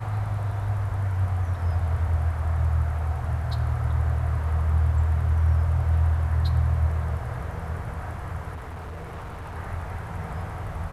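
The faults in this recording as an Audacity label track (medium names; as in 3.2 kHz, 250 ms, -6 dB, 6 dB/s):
8.550000	9.560000	clipped -32.5 dBFS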